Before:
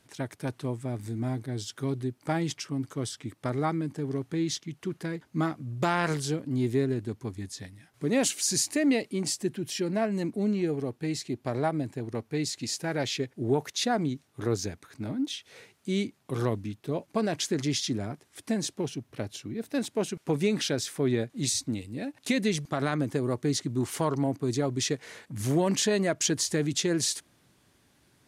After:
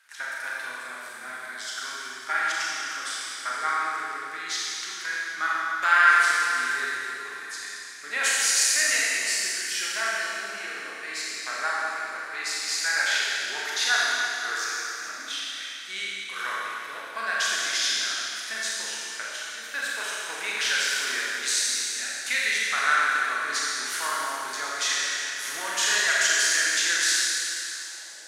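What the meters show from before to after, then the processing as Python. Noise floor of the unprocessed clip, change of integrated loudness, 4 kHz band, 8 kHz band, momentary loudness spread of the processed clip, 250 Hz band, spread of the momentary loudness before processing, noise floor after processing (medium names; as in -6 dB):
-67 dBFS, +5.0 dB, +8.5 dB, +7.5 dB, 13 LU, -22.0 dB, 10 LU, -39 dBFS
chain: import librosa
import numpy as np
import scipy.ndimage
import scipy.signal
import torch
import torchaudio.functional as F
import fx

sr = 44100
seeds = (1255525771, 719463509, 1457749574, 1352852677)

y = fx.filter_sweep_highpass(x, sr, from_hz=1500.0, to_hz=500.0, start_s=27.61, end_s=28.12, q=4.1)
y = fx.rev_schroeder(y, sr, rt60_s=3.0, comb_ms=28, drr_db=-6.0)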